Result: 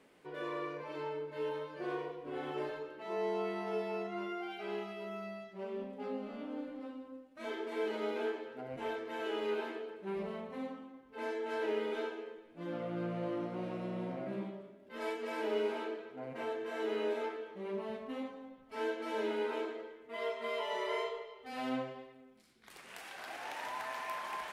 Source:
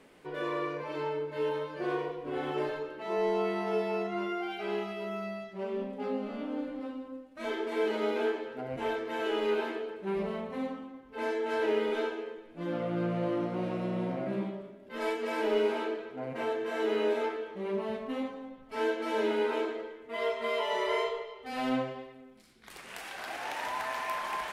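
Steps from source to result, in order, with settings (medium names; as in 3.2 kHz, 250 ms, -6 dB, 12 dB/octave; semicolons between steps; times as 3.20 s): bass shelf 61 Hz -9 dB; trim -6 dB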